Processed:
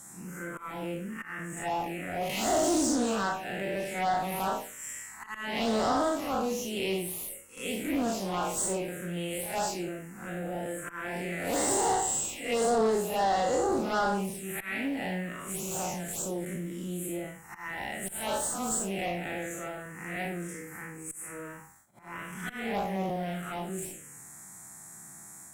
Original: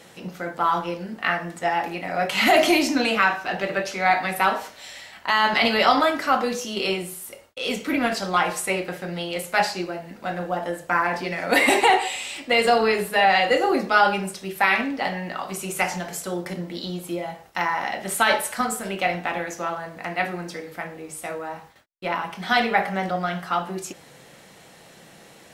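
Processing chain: time blur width 0.12 s; resonant high shelf 5800 Hz +10 dB, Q 3; auto swell 0.266 s; tube stage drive 20 dB, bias 0.4; envelope phaser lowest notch 430 Hz, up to 2400 Hz, full sweep at -22.5 dBFS; on a send: reverse echo 82 ms -15 dB; on the sum: Doppler distortion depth 0.14 ms

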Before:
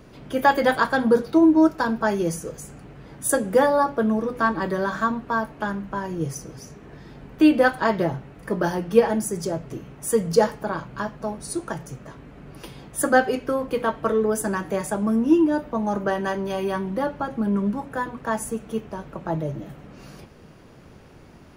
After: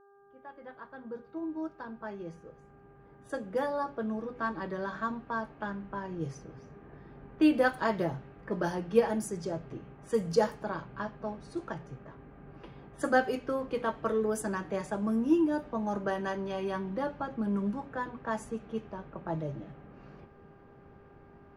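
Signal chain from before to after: opening faded in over 6.80 s; buzz 400 Hz, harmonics 4, -52 dBFS -5 dB/oct; low-pass opened by the level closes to 1600 Hz, open at -17.5 dBFS; gain -8 dB

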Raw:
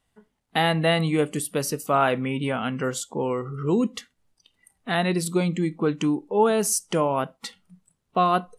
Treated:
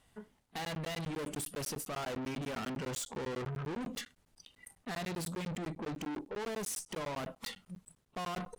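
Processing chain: reverse; compressor 6:1, threshold -28 dBFS, peak gain reduction 13 dB; reverse; tube stage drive 43 dB, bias 0.25; crackling interface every 0.10 s, samples 512, zero, from 0.65; gain +6 dB

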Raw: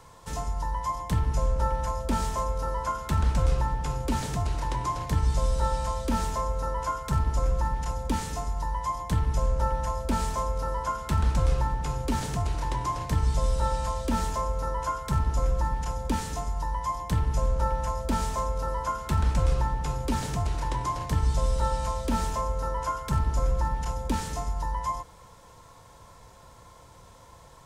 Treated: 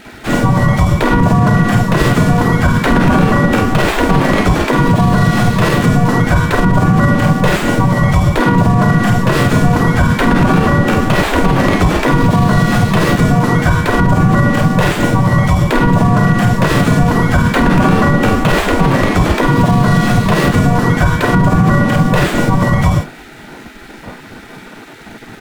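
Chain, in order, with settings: median filter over 9 samples; notches 60/120/180/240/300 Hz; early reflections 17 ms -12.5 dB, 41 ms -8.5 dB, 53 ms -4 dB; speed mistake 44.1 kHz file played as 48 kHz; spectral gate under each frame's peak -15 dB weak; tone controls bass +15 dB, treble -7 dB; maximiser +27 dB; gain -1 dB

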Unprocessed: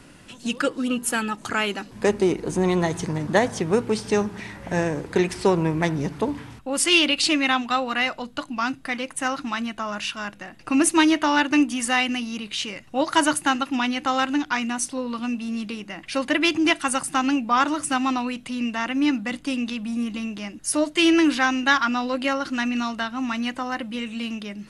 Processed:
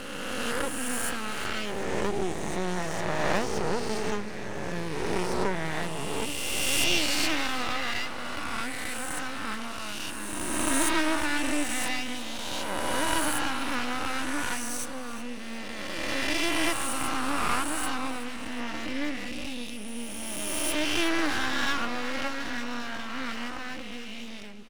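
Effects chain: spectral swells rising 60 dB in 2.69 s; half-wave rectifier; feedback echo 0.369 s, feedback 44%, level -14.5 dB; gain -8 dB

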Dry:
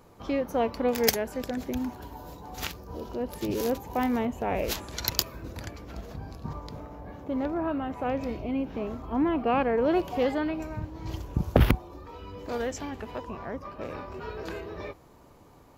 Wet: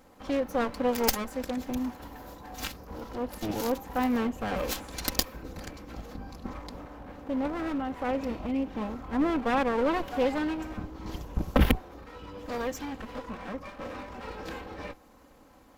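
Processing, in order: minimum comb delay 3.8 ms

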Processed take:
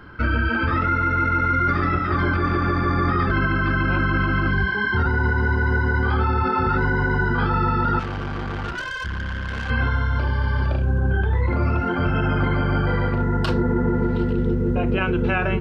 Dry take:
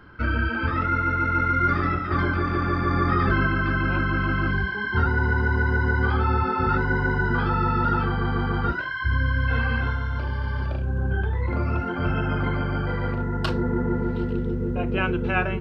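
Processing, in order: limiter -17.5 dBFS, peak gain reduction 8.5 dB; 7.99–9.7 tube stage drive 30 dB, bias 0.75; gain +5.5 dB

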